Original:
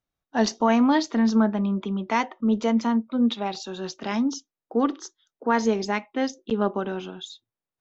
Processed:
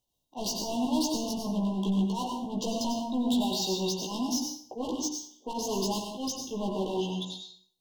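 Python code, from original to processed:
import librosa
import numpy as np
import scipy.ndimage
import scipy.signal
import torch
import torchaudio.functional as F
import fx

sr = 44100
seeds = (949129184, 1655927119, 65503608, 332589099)

p1 = fx.high_shelf(x, sr, hz=2600.0, db=7.0)
p2 = fx.hum_notches(p1, sr, base_hz=60, count=5)
p3 = fx.level_steps(p2, sr, step_db=17)
p4 = p2 + (p3 * librosa.db_to_amplitude(0.0))
p5 = fx.auto_swell(p4, sr, attack_ms=133.0)
p6 = np.clip(10.0 ** (27.0 / 20.0) * p5, -1.0, 1.0) / 10.0 ** (27.0 / 20.0)
p7 = fx.brickwall_bandstop(p6, sr, low_hz=1100.0, high_hz=2700.0)
p8 = fx.doubler(p7, sr, ms=16.0, db=-3)
p9 = fx.rev_plate(p8, sr, seeds[0], rt60_s=0.56, hf_ratio=0.85, predelay_ms=80, drr_db=2.5)
y = p9 * librosa.db_to_amplitude(-3.5)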